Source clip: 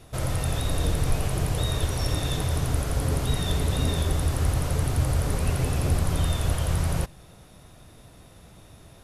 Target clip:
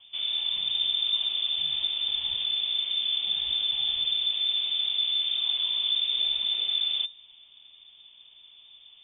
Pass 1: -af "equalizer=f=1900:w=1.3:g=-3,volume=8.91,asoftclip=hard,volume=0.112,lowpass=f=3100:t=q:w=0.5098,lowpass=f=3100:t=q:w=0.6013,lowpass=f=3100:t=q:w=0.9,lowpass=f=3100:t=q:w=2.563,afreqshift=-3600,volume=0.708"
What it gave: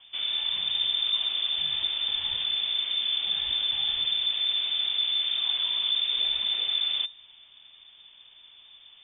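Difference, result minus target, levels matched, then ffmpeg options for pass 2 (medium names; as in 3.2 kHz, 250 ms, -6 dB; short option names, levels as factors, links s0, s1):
2 kHz band +4.0 dB
-af "equalizer=f=1900:w=1.3:g=-13,volume=8.91,asoftclip=hard,volume=0.112,lowpass=f=3100:t=q:w=0.5098,lowpass=f=3100:t=q:w=0.6013,lowpass=f=3100:t=q:w=0.9,lowpass=f=3100:t=q:w=2.563,afreqshift=-3600,volume=0.708"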